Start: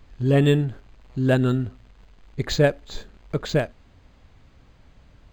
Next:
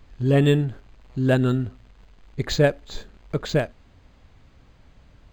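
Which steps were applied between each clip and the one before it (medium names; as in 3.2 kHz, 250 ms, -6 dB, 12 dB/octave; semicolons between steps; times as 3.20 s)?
no audible change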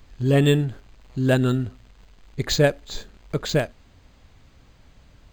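treble shelf 4.4 kHz +8.5 dB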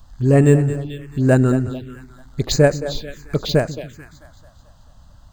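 two-band feedback delay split 320 Hz, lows 145 ms, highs 219 ms, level -12 dB; touch-sensitive phaser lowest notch 350 Hz, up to 3.4 kHz, full sweep at -20 dBFS; trim +5 dB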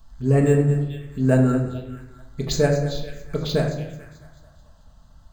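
reverberation RT60 0.75 s, pre-delay 4 ms, DRR 1 dB; trim -7 dB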